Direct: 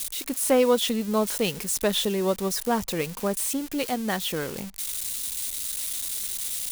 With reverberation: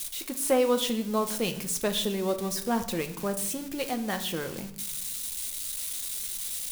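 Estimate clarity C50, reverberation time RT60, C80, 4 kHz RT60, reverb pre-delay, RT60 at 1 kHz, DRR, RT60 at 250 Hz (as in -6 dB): 12.5 dB, 0.70 s, 15.5 dB, 0.55 s, 6 ms, 0.60 s, 7.0 dB, 1.3 s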